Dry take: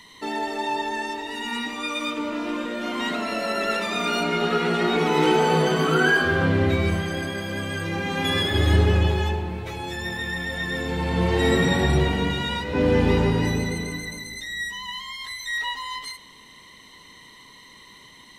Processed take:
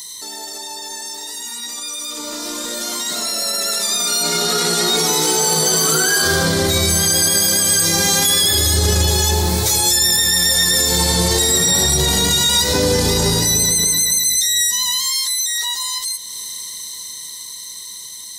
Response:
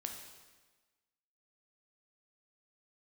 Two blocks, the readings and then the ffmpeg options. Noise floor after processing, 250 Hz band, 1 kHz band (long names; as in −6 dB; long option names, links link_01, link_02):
−33 dBFS, −0.5 dB, +1.0 dB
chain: -filter_complex "[0:a]acrossover=split=490[link_01][link_02];[link_01]equalizer=frequency=260:width=3.2:gain=-7.5[link_03];[link_02]aexciter=amount=8.8:drive=9.6:freq=4200[link_04];[link_03][link_04]amix=inputs=2:normalize=0,acompressor=threshold=-29dB:ratio=2,alimiter=limit=-21.5dB:level=0:latency=1:release=19,dynaudnorm=framelen=440:gausssize=17:maxgain=15dB,bandreject=frequency=50:width_type=h:width=6,bandreject=frequency=100:width_type=h:width=6,bandreject=frequency=150:width_type=h:width=6"